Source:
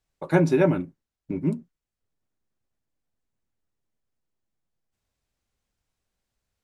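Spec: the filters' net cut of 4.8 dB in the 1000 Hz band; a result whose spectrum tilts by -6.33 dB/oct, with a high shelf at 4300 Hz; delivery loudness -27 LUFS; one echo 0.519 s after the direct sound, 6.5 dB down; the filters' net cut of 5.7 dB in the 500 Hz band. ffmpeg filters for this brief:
-af "equalizer=f=500:t=o:g=-7.5,equalizer=f=1k:t=o:g=-4,highshelf=f=4.3k:g=7,aecho=1:1:519:0.473,volume=0.5dB"

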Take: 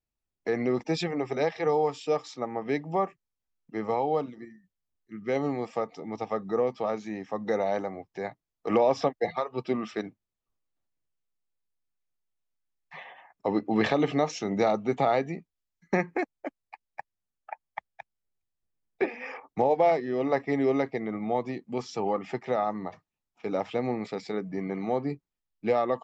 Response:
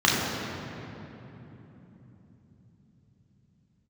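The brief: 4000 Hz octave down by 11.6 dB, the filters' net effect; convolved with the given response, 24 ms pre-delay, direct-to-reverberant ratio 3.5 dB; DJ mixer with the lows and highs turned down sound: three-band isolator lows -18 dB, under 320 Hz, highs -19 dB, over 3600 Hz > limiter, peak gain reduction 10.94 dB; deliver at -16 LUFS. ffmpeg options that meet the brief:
-filter_complex "[0:a]equalizer=f=4k:t=o:g=-7.5,asplit=2[a][b];[1:a]atrim=start_sample=2205,adelay=24[c];[b][c]afir=irnorm=-1:irlink=0,volume=-23dB[d];[a][d]amix=inputs=2:normalize=0,acrossover=split=320 3600:gain=0.126 1 0.112[e][f][g];[e][f][g]amix=inputs=3:normalize=0,volume=17.5dB,alimiter=limit=-5dB:level=0:latency=1"

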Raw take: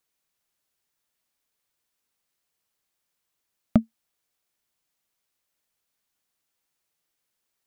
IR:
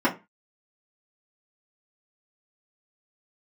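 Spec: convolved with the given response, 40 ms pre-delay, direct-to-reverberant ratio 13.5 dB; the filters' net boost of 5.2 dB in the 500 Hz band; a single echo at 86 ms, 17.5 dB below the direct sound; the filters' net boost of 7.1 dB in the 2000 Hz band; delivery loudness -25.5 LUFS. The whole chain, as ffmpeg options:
-filter_complex "[0:a]equalizer=f=500:t=o:g=6.5,equalizer=f=2k:t=o:g=8.5,aecho=1:1:86:0.133,asplit=2[a][b];[1:a]atrim=start_sample=2205,adelay=40[c];[b][c]afir=irnorm=-1:irlink=0,volume=-29dB[d];[a][d]amix=inputs=2:normalize=0,volume=-0.5dB"

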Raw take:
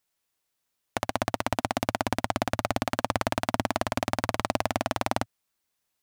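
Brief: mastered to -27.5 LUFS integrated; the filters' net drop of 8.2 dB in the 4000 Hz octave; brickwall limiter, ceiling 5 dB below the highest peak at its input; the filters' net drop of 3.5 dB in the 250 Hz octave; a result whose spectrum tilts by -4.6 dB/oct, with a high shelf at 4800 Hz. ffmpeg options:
-af "equalizer=f=250:t=o:g=-4,equalizer=f=4k:t=o:g=-8,highshelf=f=4.8k:g=-6.5,volume=7dB,alimiter=limit=-6dB:level=0:latency=1"

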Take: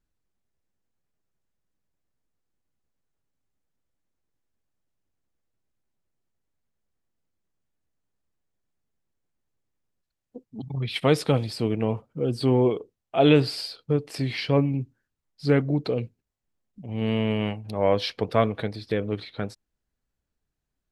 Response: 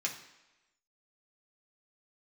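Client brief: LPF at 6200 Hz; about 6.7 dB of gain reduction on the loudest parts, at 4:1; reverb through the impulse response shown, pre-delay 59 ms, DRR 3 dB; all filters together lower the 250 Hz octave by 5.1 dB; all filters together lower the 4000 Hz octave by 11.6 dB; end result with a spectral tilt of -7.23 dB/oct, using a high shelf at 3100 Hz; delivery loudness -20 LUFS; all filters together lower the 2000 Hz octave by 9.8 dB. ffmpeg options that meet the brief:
-filter_complex "[0:a]lowpass=6.2k,equalizer=f=250:t=o:g=-6.5,equalizer=f=2k:t=o:g=-8.5,highshelf=f=3.1k:g=-4.5,equalizer=f=4k:t=o:g=-8,acompressor=threshold=-24dB:ratio=4,asplit=2[a][b];[1:a]atrim=start_sample=2205,adelay=59[c];[b][c]afir=irnorm=-1:irlink=0,volume=-6.5dB[d];[a][d]amix=inputs=2:normalize=0,volume=11dB"

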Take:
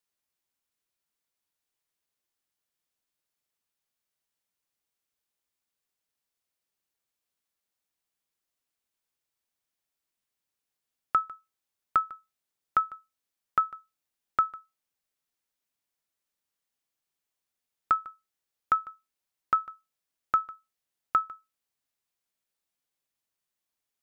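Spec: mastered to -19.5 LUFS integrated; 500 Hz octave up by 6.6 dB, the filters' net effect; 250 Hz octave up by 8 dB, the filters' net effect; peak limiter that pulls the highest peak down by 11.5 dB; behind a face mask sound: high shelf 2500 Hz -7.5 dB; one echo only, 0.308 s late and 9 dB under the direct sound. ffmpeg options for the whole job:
-af "equalizer=f=250:t=o:g=8.5,equalizer=f=500:t=o:g=6.5,alimiter=limit=-22dB:level=0:latency=1,highshelf=f=2.5k:g=-7.5,aecho=1:1:308:0.355,volume=18.5dB"

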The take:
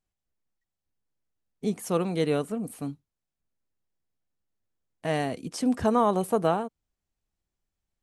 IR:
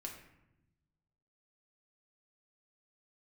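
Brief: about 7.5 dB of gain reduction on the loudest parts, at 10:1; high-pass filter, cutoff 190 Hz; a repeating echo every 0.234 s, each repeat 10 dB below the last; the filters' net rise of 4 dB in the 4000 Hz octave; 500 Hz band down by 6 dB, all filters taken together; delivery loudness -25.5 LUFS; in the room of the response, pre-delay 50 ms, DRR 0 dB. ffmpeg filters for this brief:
-filter_complex "[0:a]highpass=190,equalizer=f=500:t=o:g=-7.5,equalizer=f=4k:t=o:g=5.5,acompressor=threshold=-28dB:ratio=10,aecho=1:1:234|468|702|936:0.316|0.101|0.0324|0.0104,asplit=2[a][b];[1:a]atrim=start_sample=2205,adelay=50[c];[b][c]afir=irnorm=-1:irlink=0,volume=2.5dB[d];[a][d]amix=inputs=2:normalize=0,volume=6.5dB"

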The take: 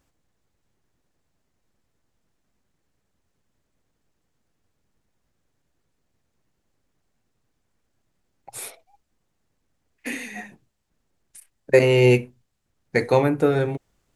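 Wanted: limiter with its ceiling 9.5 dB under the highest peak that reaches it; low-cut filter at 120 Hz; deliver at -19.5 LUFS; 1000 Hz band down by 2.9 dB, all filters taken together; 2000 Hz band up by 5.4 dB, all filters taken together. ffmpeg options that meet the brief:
-af "highpass=120,equalizer=f=1k:t=o:g=-5.5,equalizer=f=2k:t=o:g=7.5,volume=6dB,alimiter=limit=-6dB:level=0:latency=1"

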